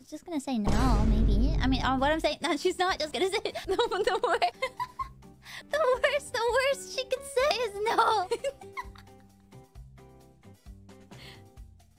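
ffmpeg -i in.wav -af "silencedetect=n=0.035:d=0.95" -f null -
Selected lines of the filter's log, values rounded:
silence_start: 8.81
silence_end: 11.99 | silence_duration: 3.18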